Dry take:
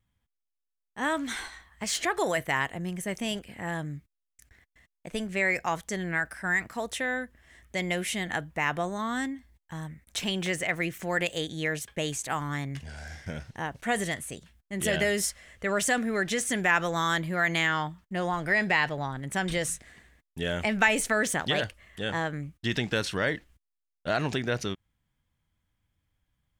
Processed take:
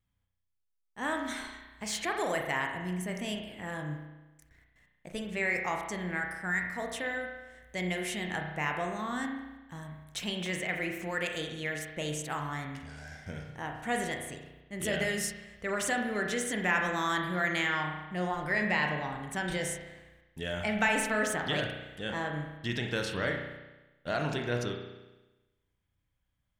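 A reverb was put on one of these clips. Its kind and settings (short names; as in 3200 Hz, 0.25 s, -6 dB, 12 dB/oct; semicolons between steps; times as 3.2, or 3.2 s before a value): spring tank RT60 1.1 s, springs 33 ms, chirp 35 ms, DRR 2.5 dB; gain -5.5 dB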